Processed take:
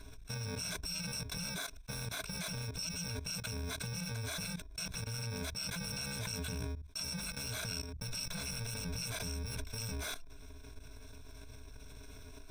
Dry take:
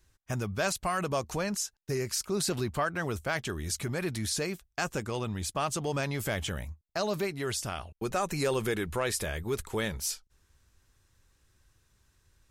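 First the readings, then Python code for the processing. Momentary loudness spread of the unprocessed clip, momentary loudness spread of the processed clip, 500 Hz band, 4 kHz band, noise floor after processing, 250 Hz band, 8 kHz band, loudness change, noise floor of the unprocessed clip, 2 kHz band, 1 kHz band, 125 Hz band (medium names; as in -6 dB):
5 LU, 16 LU, -16.5 dB, -1.5 dB, -51 dBFS, -10.0 dB, -6.0 dB, -7.0 dB, -72 dBFS, -8.0 dB, -15.5 dB, -5.0 dB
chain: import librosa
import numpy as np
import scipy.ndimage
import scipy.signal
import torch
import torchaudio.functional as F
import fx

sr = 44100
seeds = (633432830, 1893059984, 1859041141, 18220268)

y = fx.bit_reversed(x, sr, seeds[0], block=128)
y = fx.ripple_eq(y, sr, per_octave=1.6, db=14)
y = fx.level_steps(y, sr, step_db=19)
y = fx.air_absorb(y, sr, metres=52.0)
y = fx.env_flatten(y, sr, amount_pct=70)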